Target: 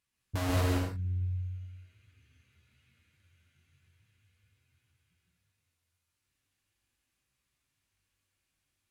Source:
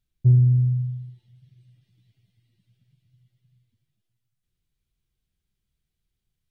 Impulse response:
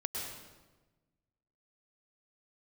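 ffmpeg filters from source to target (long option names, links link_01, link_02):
-filter_complex "[0:a]highpass=frequency=410:poles=1,asplit=2[link_01][link_02];[link_02]aeval=exprs='(mod(14.1*val(0)+1,2)-1)/14.1':channel_layout=same,volume=-4.5dB[link_03];[link_01][link_03]amix=inputs=2:normalize=0,asetrate=32193,aresample=44100,flanger=delay=15.5:depth=6.5:speed=0.42[link_04];[1:a]atrim=start_sample=2205,afade=type=out:start_time=0.3:duration=0.01,atrim=end_sample=13671,asetrate=36603,aresample=44100[link_05];[link_04][link_05]afir=irnorm=-1:irlink=0,volume=1.5dB"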